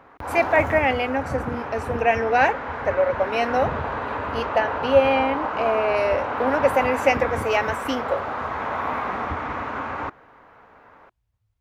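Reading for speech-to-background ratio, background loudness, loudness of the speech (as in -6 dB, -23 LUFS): 5.5 dB, -28.0 LUFS, -22.5 LUFS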